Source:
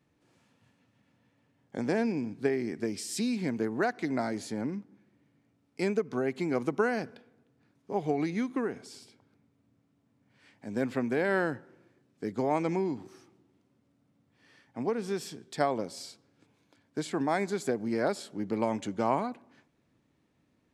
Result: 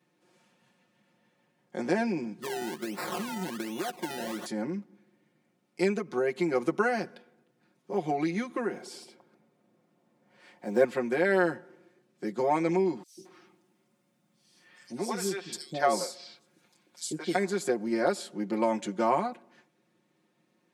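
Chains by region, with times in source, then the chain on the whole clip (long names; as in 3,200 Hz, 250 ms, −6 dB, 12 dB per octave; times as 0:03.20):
0:02.42–0:04.46: high-shelf EQ 8,200 Hz +5 dB + downward compressor 10 to 1, threshold −31 dBFS + sample-and-hold swept by an LFO 27× 1.3 Hz
0:08.73–0:10.85: one scale factor per block 7 bits + parametric band 610 Hz +7.5 dB 2.3 octaves
0:13.03–0:17.35: high-shelf EQ 2,900 Hz +6.5 dB + three-band delay without the direct sound highs, lows, mids 140/220 ms, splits 460/3,800 Hz
whole clip: high-pass filter 210 Hz 12 dB per octave; parametric band 9,900 Hz +2 dB 0.38 octaves; comb filter 5.6 ms, depth 94%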